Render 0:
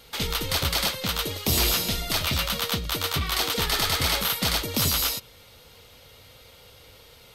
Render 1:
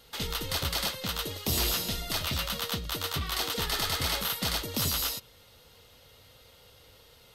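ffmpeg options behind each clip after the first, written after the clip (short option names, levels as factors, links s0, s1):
-af "bandreject=f=2300:w=14,volume=0.531"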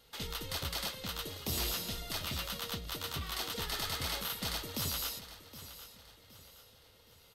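-af "aecho=1:1:768|1536|2304|3072:0.2|0.0798|0.0319|0.0128,volume=0.447"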